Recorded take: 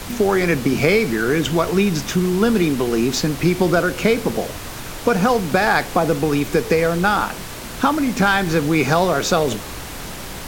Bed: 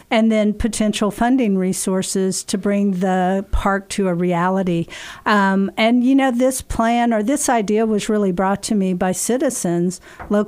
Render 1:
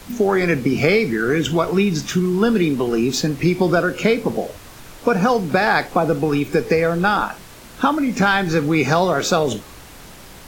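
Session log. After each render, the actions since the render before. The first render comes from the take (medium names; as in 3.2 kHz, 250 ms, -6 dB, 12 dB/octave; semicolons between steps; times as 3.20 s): noise print and reduce 9 dB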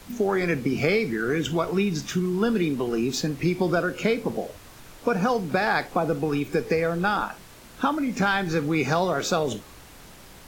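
trim -6.5 dB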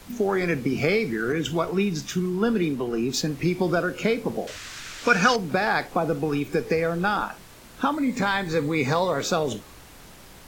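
1.32–3.22 s: three bands expanded up and down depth 40%; 4.47–5.36 s: high-order bell 3.2 kHz +13.5 dB 2.9 oct; 7.93–9.23 s: rippled EQ curve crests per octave 1, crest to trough 7 dB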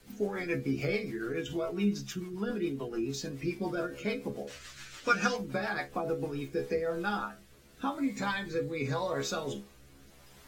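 inharmonic resonator 67 Hz, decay 0.28 s, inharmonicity 0.002; rotary cabinet horn 7 Hz, later 0.85 Hz, at 6.14 s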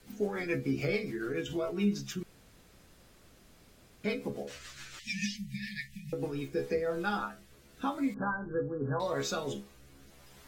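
2.23–4.04 s: room tone; 4.99–6.13 s: brick-wall FIR band-stop 230–1700 Hz; 8.14–9.00 s: brick-wall FIR low-pass 1.7 kHz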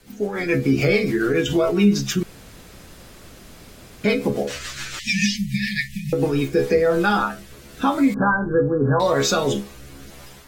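level rider gain up to 9.5 dB; in parallel at +0.5 dB: peak limiter -18 dBFS, peak gain reduction 9 dB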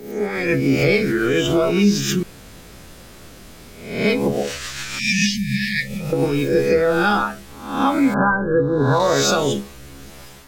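reverse spectral sustain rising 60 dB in 0.66 s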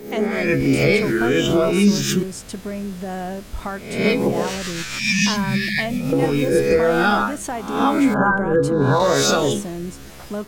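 add bed -11 dB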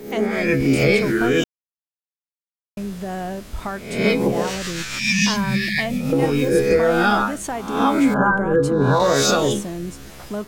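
1.44–2.77 s: mute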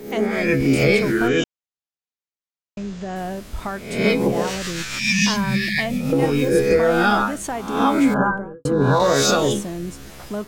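1.28–3.16 s: Chebyshev low-pass 7.1 kHz, order 4; 8.12–8.65 s: studio fade out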